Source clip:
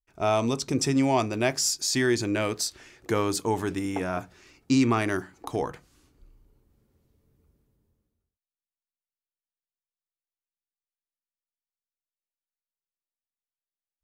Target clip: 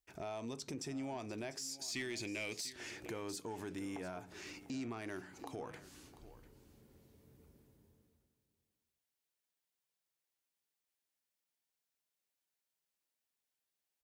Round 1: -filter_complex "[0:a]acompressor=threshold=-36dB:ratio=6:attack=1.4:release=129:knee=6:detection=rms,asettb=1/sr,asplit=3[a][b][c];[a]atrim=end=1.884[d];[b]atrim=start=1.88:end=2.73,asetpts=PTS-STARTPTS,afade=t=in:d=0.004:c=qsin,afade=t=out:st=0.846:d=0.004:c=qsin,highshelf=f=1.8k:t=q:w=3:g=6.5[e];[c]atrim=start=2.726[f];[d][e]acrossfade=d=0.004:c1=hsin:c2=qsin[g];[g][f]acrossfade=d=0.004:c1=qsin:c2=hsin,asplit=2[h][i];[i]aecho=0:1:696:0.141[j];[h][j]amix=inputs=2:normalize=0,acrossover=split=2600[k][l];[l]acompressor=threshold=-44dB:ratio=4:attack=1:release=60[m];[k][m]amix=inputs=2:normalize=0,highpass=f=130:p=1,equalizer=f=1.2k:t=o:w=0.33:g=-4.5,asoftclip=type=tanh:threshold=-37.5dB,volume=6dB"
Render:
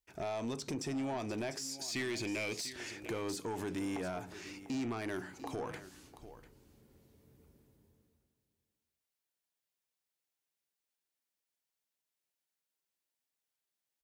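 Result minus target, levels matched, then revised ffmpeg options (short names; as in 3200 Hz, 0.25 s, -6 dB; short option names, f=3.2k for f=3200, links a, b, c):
compressor: peak gain reduction -7.5 dB
-filter_complex "[0:a]acompressor=threshold=-45dB:ratio=6:attack=1.4:release=129:knee=6:detection=rms,asettb=1/sr,asplit=3[a][b][c];[a]atrim=end=1.884[d];[b]atrim=start=1.88:end=2.73,asetpts=PTS-STARTPTS,afade=t=in:d=0.004:c=qsin,afade=t=out:st=0.846:d=0.004:c=qsin,highshelf=f=1.8k:t=q:w=3:g=6.5[e];[c]atrim=start=2.726[f];[d][e]acrossfade=d=0.004:c1=hsin:c2=qsin[g];[g][f]acrossfade=d=0.004:c1=qsin:c2=hsin,asplit=2[h][i];[i]aecho=0:1:696:0.141[j];[h][j]amix=inputs=2:normalize=0,acrossover=split=2600[k][l];[l]acompressor=threshold=-44dB:ratio=4:attack=1:release=60[m];[k][m]amix=inputs=2:normalize=0,highpass=f=130:p=1,equalizer=f=1.2k:t=o:w=0.33:g=-4.5,asoftclip=type=tanh:threshold=-37.5dB,volume=6dB"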